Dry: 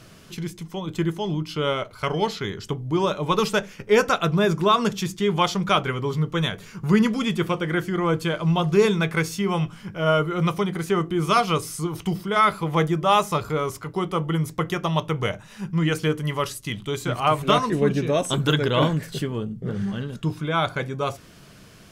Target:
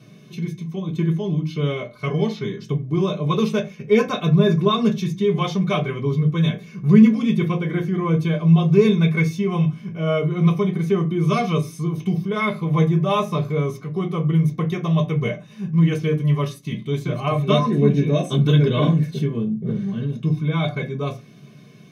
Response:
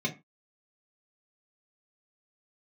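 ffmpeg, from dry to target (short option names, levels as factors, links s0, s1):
-filter_complex "[0:a]highshelf=f=11000:g=5[s0];[1:a]atrim=start_sample=2205[s1];[s0][s1]afir=irnorm=-1:irlink=0,volume=0.335"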